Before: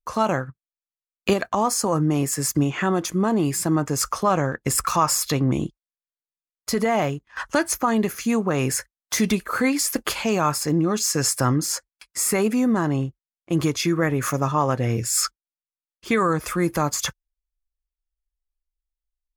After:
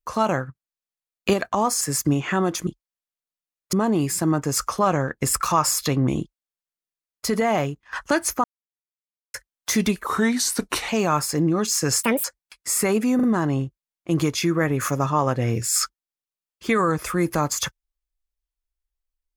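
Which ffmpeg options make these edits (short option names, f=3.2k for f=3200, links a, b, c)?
-filter_complex "[0:a]asplit=12[a][b][c][d][e][f][g][h][i][j][k][l];[a]atrim=end=1.812[m];[b]atrim=start=2.308:end=3.172[n];[c]atrim=start=5.638:end=6.702[o];[d]atrim=start=3.168:end=7.88,asetpts=PTS-STARTPTS,afade=t=out:st=4.708:d=0.004:c=hsin[p];[e]atrim=start=7.88:end=8.78,asetpts=PTS-STARTPTS,volume=0[q];[f]atrim=start=8.78:end=9.504,asetpts=PTS-STARTPTS,afade=t=in:d=0.004:c=hsin[r];[g]atrim=start=9.5:end=10.21,asetpts=PTS-STARTPTS,asetrate=37926,aresample=44100,atrim=end_sample=36408,asetpts=PTS-STARTPTS[s];[h]atrim=start=10.206:end=11.354[t];[i]atrim=start=11.35:end=11.74,asetpts=PTS-STARTPTS,asetrate=78939,aresample=44100,atrim=end_sample=9608,asetpts=PTS-STARTPTS[u];[j]atrim=start=11.736:end=12.692[v];[k]atrim=start=12.648:end=12.692[w];[l]atrim=start=12.648[x];[m][n]acrossfade=d=0.004:c1=hsin:c2=hsin[y];[y][o]acrossfade=d=0.004:c1=hsin:c2=hsin[z];[p][q][r]concat=n=3:v=0:a=1[aa];[z][aa]acrossfade=d=0.004:c1=hsin:c2=hsin[ab];[ab][s]acrossfade=d=0.004:c1=hsin:c2=hsin[ac];[ac][t]acrossfade=d=0.004:c1=hsin:c2=hsin[ad];[ad][u]acrossfade=d=0.004:c1=hsin:c2=hsin[ae];[ae][v]acrossfade=d=0.004:c1=hsin:c2=hsin[af];[af][w]acrossfade=d=0.004:c1=hsin:c2=hsin[ag];[ag][x]acrossfade=d=0.004:c1=hsin:c2=hsin"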